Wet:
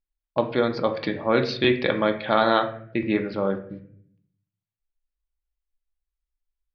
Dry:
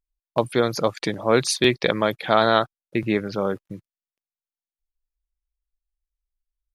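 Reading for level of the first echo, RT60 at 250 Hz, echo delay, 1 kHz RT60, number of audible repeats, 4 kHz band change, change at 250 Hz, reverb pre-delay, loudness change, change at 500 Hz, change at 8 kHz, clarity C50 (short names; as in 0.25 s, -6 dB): none, 0.90 s, none, 0.50 s, none, -4.0 dB, 0.0 dB, 3 ms, -1.5 dB, -1.5 dB, under -25 dB, 10.5 dB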